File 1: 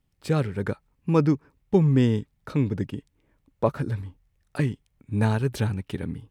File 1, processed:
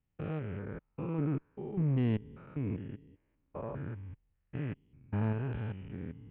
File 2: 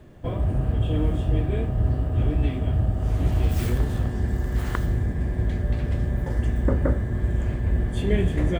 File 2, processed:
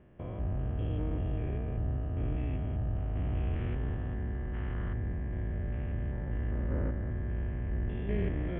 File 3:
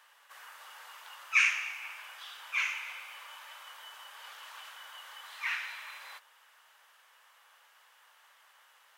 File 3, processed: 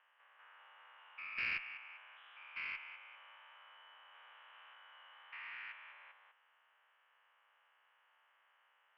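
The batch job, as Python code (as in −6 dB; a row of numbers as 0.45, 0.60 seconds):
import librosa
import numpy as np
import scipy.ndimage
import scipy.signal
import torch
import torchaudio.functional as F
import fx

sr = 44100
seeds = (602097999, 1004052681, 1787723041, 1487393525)

y = fx.spec_steps(x, sr, hold_ms=200)
y = scipy.signal.sosfilt(scipy.signal.butter(12, 3100.0, 'lowpass', fs=sr, output='sos'), y)
y = fx.cheby_harmonics(y, sr, harmonics=(4,), levels_db=(-22,), full_scale_db=-11.0)
y = y * 10.0 ** (-8.5 / 20.0)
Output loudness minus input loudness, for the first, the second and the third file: −11.0, −10.0, −12.0 LU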